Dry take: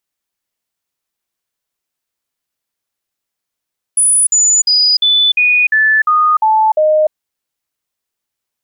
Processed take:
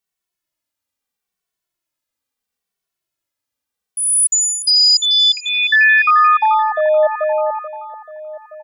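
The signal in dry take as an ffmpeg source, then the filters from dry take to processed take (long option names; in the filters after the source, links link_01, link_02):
-f lavfi -i "aevalsrc='0.422*clip(min(mod(t,0.35),0.3-mod(t,0.35))/0.005,0,1)*sin(2*PI*9870*pow(2,-floor(t/0.35)/2)*mod(t,0.35))':duration=3.15:sample_rate=44100"
-filter_complex "[0:a]asplit=2[link_01][link_02];[link_02]adelay=435,lowpass=frequency=2700:poles=1,volume=-6dB,asplit=2[link_03][link_04];[link_04]adelay=435,lowpass=frequency=2700:poles=1,volume=0.53,asplit=2[link_05][link_06];[link_06]adelay=435,lowpass=frequency=2700:poles=1,volume=0.53,asplit=2[link_07][link_08];[link_08]adelay=435,lowpass=frequency=2700:poles=1,volume=0.53,asplit=2[link_09][link_10];[link_10]adelay=435,lowpass=frequency=2700:poles=1,volume=0.53,asplit=2[link_11][link_12];[link_12]adelay=435,lowpass=frequency=2700:poles=1,volume=0.53,asplit=2[link_13][link_14];[link_14]adelay=435,lowpass=frequency=2700:poles=1,volume=0.53[link_15];[link_03][link_05][link_07][link_09][link_11][link_13][link_15]amix=inputs=7:normalize=0[link_16];[link_01][link_16]amix=inputs=2:normalize=0,asplit=2[link_17][link_18];[link_18]adelay=2.2,afreqshift=-0.75[link_19];[link_17][link_19]amix=inputs=2:normalize=1"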